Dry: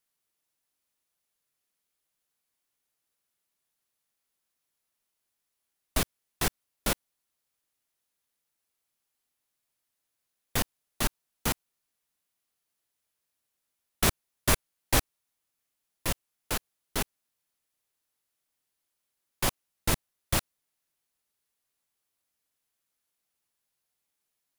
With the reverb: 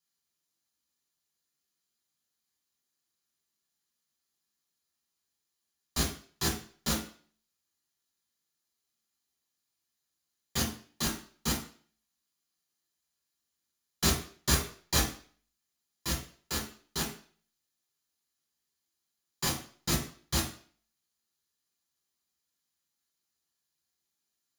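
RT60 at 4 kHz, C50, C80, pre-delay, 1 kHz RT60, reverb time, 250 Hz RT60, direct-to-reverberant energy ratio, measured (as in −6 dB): 0.45 s, 7.5 dB, 11.5 dB, 3 ms, 0.45 s, 0.45 s, 0.40 s, −3.5 dB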